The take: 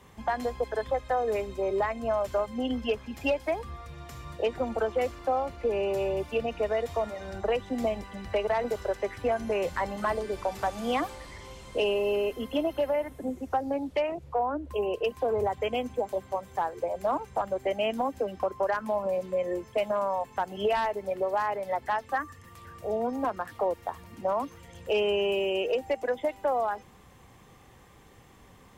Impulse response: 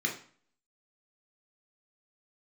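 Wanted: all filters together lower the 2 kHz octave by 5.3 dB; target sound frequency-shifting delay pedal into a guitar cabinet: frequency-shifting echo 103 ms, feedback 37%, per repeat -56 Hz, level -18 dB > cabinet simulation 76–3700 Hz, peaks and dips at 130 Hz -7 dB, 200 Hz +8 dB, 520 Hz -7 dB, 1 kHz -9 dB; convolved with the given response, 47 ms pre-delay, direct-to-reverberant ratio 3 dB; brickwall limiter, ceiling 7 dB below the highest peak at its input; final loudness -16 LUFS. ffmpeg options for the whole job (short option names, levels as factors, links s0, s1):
-filter_complex "[0:a]equalizer=f=2000:t=o:g=-6.5,alimiter=level_in=1.12:limit=0.0631:level=0:latency=1,volume=0.891,asplit=2[s0][s1];[1:a]atrim=start_sample=2205,adelay=47[s2];[s1][s2]afir=irnorm=-1:irlink=0,volume=0.335[s3];[s0][s3]amix=inputs=2:normalize=0,asplit=4[s4][s5][s6][s7];[s5]adelay=103,afreqshift=-56,volume=0.126[s8];[s6]adelay=206,afreqshift=-112,volume=0.0468[s9];[s7]adelay=309,afreqshift=-168,volume=0.0172[s10];[s4][s8][s9][s10]amix=inputs=4:normalize=0,highpass=76,equalizer=f=130:t=q:w=4:g=-7,equalizer=f=200:t=q:w=4:g=8,equalizer=f=520:t=q:w=4:g=-7,equalizer=f=1000:t=q:w=4:g=-9,lowpass=f=3700:w=0.5412,lowpass=f=3700:w=1.3066,volume=7.94"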